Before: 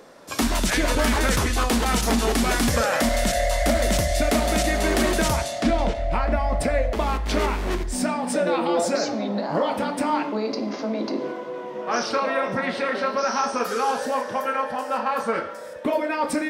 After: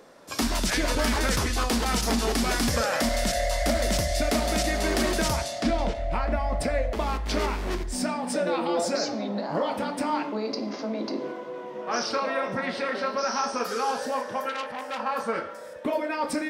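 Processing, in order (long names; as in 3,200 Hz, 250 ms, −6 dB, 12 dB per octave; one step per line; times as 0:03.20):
dynamic equaliser 5,000 Hz, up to +5 dB, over −45 dBFS, Q 2.7
0:14.49–0:15.00: saturating transformer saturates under 3,000 Hz
level −4 dB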